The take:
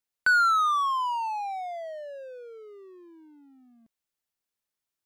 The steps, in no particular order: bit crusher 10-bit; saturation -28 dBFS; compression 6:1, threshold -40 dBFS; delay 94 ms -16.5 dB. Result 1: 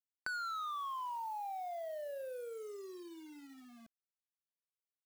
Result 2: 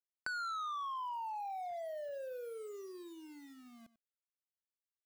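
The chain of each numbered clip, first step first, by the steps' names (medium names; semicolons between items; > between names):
saturation > delay > compression > bit crusher; bit crusher > delay > saturation > compression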